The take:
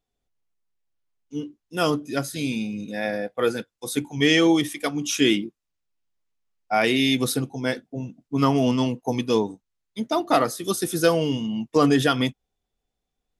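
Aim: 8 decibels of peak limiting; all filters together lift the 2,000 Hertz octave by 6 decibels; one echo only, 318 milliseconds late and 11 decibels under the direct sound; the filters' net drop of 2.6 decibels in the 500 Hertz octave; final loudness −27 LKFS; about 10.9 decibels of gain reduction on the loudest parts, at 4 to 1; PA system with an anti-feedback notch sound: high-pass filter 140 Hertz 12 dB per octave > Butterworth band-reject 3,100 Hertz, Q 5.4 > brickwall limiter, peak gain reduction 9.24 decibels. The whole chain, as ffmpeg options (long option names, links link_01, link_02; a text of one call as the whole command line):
ffmpeg -i in.wav -af "equalizer=frequency=500:width_type=o:gain=-3.5,equalizer=frequency=2000:width_type=o:gain=7.5,acompressor=threshold=-26dB:ratio=4,alimiter=limit=-20dB:level=0:latency=1,highpass=140,asuperstop=centerf=3100:order=8:qfactor=5.4,aecho=1:1:318:0.282,volume=10.5dB,alimiter=limit=-17.5dB:level=0:latency=1" out.wav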